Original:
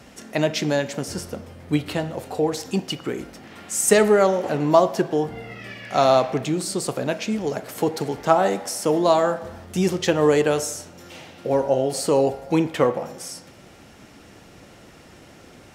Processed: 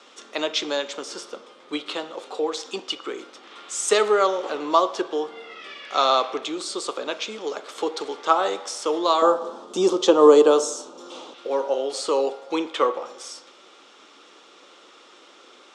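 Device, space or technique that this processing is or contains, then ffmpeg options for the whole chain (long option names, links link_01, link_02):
phone speaker on a table: -filter_complex "[0:a]highpass=frequency=350:width=0.5412,highpass=frequency=350:width=1.3066,equalizer=frequency=680:width_type=q:width=4:gain=-7,equalizer=frequency=1200:width_type=q:width=4:gain=9,equalizer=frequency=1800:width_type=q:width=4:gain=-5,equalizer=frequency=3500:width_type=q:width=4:gain=10,lowpass=frequency=7800:width=0.5412,lowpass=frequency=7800:width=1.3066,asettb=1/sr,asplit=3[link_01][link_02][link_03];[link_01]atrim=end=9.224[link_04];[link_02]atrim=start=9.22:end=11.34,asetpts=PTS-STARTPTS,afade=type=in:duration=0.004:curve=qsin,afade=type=out:start_time=2.116:duration=0.004:curve=qsin,equalizer=frequency=125:width_type=o:width=1:gain=5,equalizer=frequency=250:width_type=o:width=1:gain=11,equalizer=frequency=500:width_type=o:width=1:gain=5,equalizer=frequency=1000:width_type=o:width=1:gain=7,equalizer=frequency=2000:width_type=o:width=1:gain=-10,equalizer=frequency=8000:width_type=o:width=1:gain=4[link_05];[link_03]atrim=start=11.336[link_06];[link_04][link_05]acrossfade=duration=0.004:curve1=hsin:curve2=qsin[link_07];[link_07][link_06]acrossfade=duration=0.004:curve1=qsin:curve2=hsin,volume=-1.5dB"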